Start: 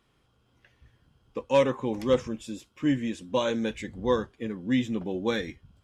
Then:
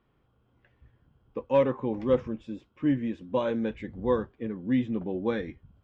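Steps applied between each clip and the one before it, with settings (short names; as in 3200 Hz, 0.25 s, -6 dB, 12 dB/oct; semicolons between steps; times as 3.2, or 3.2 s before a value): LPF 3400 Hz 12 dB/oct; high shelf 2100 Hz -11 dB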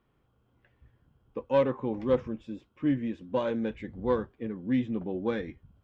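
self-modulated delay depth 0.062 ms; gain -1.5 dB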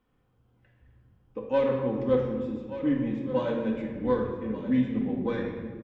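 echo 1.181 s -13 dB; shoebox room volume 1500 m³, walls mixed, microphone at 2 m; gain -3 dB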